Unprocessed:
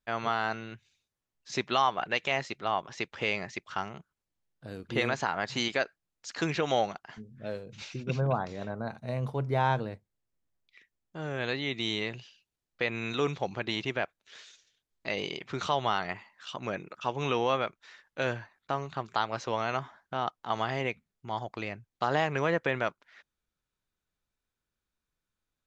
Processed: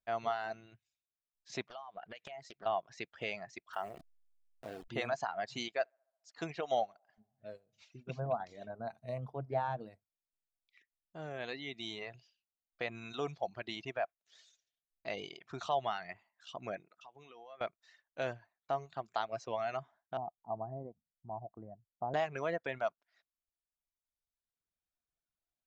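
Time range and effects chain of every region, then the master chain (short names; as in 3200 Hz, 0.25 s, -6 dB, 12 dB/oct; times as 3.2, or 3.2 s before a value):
1.67–2.66 compressor 10:1, threshold -36 dBFS + Doppler distortion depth 0.46 ms
3.73–4.88 level-crossing sampler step -44.5 dBFS + tone controls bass -11 dB, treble -6 dB + fast leveller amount 50%
5.69–8.4 narrowing echo 70 ms, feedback 74%, band-pass 880 Hz, level -18.5 dB + upward expander, over -47 dBFS
9.18–9.81 high shelf 2900 Hz -11 dB + Doppler distortion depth 0.19 ms
16.86–17.61 Bessel high-pass 160 Hz + compressor 4:1, threshold -45 dBFS
20.17–22.14 Bessel low-pass 610 Hz, order 8 + comb 1.1 ms, depth 39%
whole clip: reverb removal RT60 1.5 s; bell 680 Hz +11.5 dB 0.3 oct; gain -9 dB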